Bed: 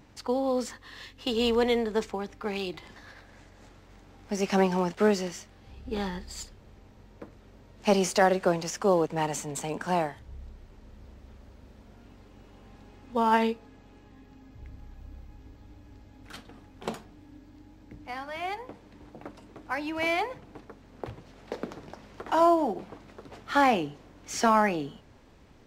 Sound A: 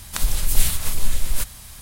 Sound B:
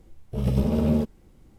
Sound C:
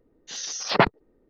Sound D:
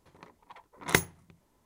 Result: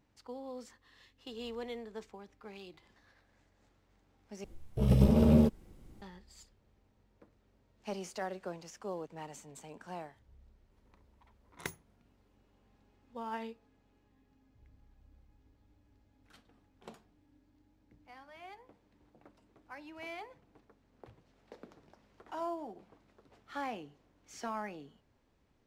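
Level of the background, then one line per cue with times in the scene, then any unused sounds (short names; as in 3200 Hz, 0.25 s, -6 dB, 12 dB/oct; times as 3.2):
bed -17 dB
4.44 replace with B -1.5 dB
10.71 add D -17 dB
not used: A, C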